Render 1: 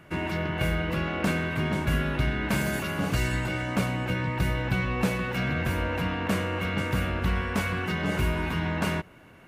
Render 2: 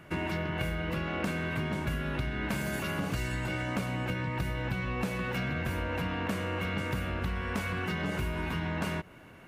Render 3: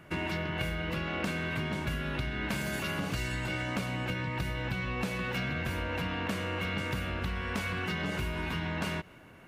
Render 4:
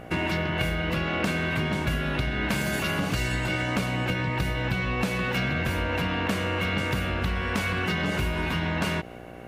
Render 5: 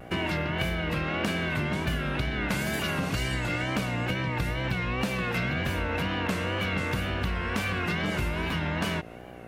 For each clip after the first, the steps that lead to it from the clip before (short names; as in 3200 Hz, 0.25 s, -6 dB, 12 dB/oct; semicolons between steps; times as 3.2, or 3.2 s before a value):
compressor, threshold -29 dBFS, peak gain reduction 9 dB
dynamic EQ 3900 Hz, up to +5 dB, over -54 dBFS, Q 0.71; gain -1.5 dB
buzz 60 Hz, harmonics 13, -50 dBFS 0 dB/oct; gain +6.5 dB
wow and flutter 85 cents; gain -2 dB